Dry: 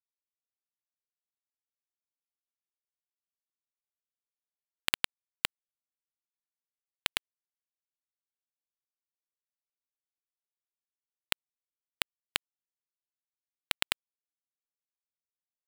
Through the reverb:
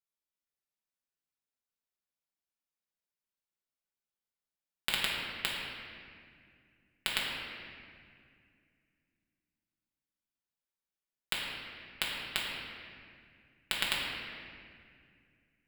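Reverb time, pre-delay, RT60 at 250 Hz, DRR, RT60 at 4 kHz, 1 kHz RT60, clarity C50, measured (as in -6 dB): 2.2 s, 5 ms, 3.3 s, -5.5 dB, 1.5 s, 2.0 s, -0.5 dB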